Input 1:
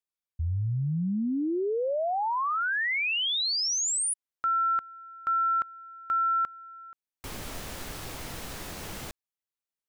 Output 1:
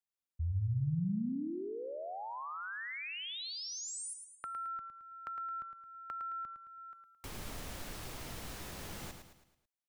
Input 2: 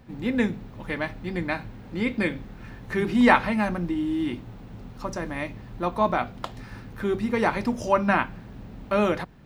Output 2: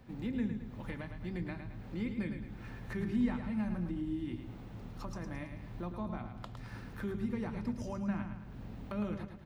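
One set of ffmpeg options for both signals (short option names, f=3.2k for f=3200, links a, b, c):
-filter_complex "[0:a]acrossover=split=220[a][b];[b]acompressor=threshold=-37dB:ratio=6:attack=7:release=504:knee=2.83:detection=peak[c];[a][c]amix=inputs=2:normalize=0,aecho=1:1:109|218|327|436|545:0.422|0.19|0.0854|0.0384|0.0173,volume=-5.5dB"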